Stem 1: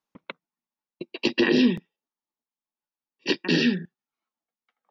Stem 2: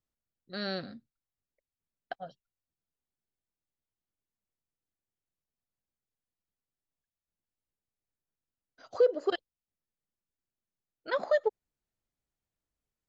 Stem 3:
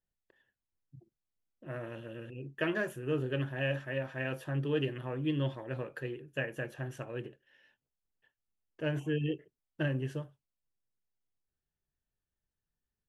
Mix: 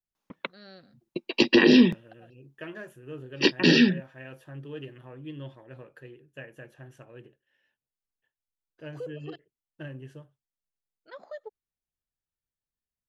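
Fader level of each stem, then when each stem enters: +3.0, -14.5, -8.0 dB; 0.15, 0.00, 0.00 s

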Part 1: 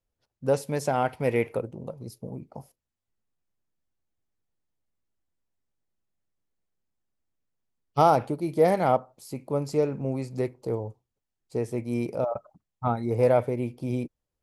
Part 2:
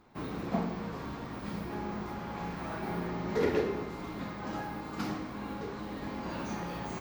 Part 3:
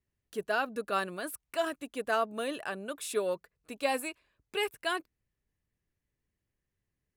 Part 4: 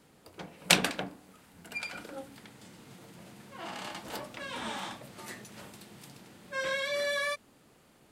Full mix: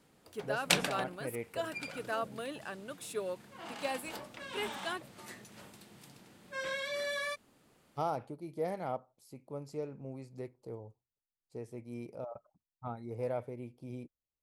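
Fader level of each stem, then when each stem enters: -15.0 dB, off, -6.5 dB, -5.0 dB; 0.00 s, off, 0.00 s, 0.00 s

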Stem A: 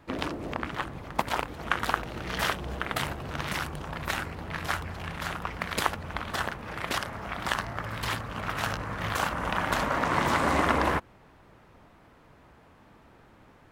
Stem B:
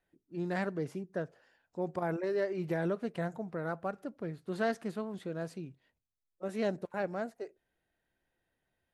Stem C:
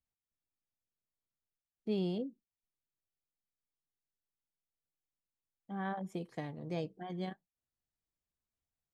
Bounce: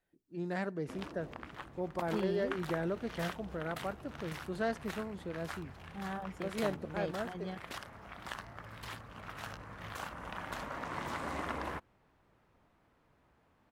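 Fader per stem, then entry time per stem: -14.0, -2.5, -2.5 dB; 0.80, 0.00, 0.25 s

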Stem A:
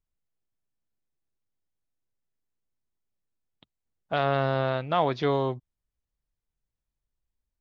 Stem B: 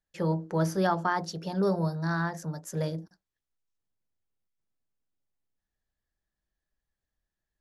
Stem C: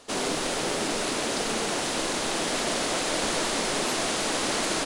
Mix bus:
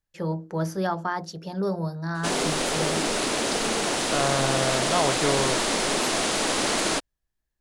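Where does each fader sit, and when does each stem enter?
-0.5, -0.5, +2.5 dB; 0.00, 0.00, 2.15 s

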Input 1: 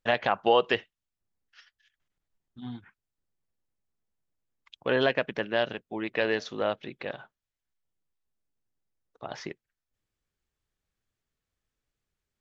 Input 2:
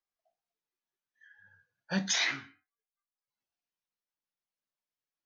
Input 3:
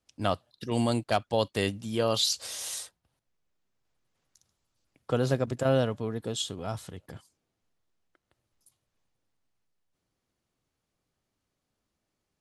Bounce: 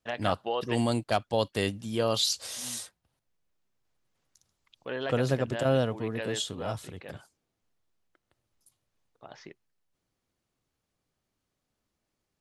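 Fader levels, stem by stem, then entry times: -9.5 dB, off, -0.5 dB; 0.00 s, off, 0.00 s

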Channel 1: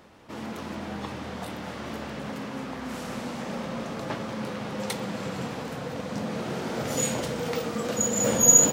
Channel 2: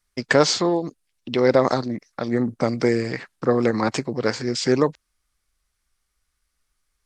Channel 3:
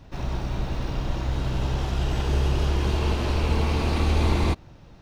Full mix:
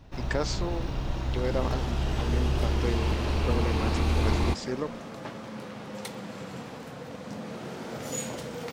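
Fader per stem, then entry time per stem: -6.5, -13.5, -3.5 dB; 1.15, 0.00, 0.00 s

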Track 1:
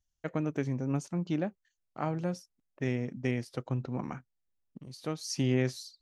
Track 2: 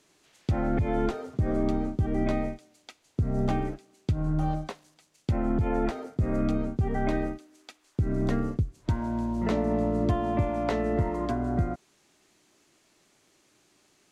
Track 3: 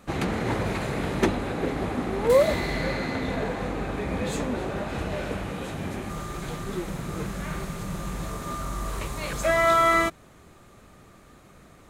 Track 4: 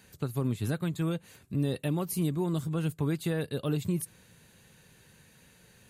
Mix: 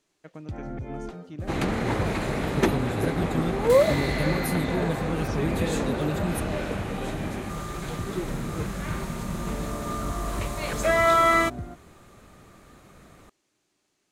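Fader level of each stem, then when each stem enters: -10.5, -9.5, +0.5, +0.5 dB; 0.00, 0.00, 1.40, 2.35 s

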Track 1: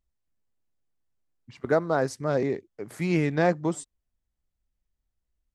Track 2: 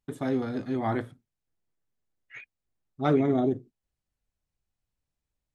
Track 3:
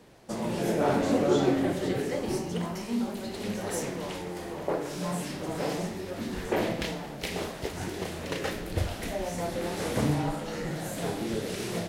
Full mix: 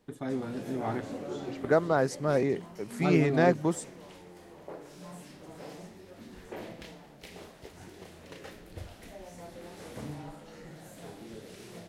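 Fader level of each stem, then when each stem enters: -1.0, -5.5, -14.0 dB; 0.00, 0.00, 0.00 s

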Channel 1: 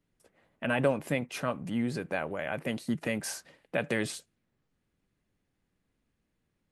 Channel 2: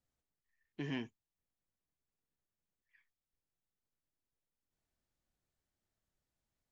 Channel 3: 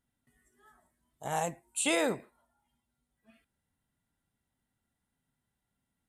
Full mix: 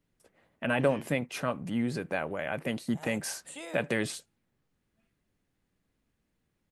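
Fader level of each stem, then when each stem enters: +0.5, -5.0, -14.5 dB; 0.00, 0.00, 1.70 s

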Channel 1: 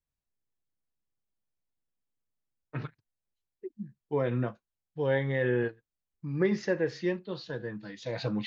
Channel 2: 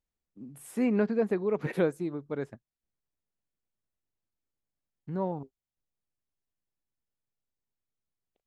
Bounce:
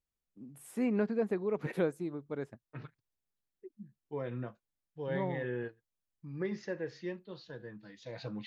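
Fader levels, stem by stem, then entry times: -9.5, -4.5 dB; 0.00, 0.00 s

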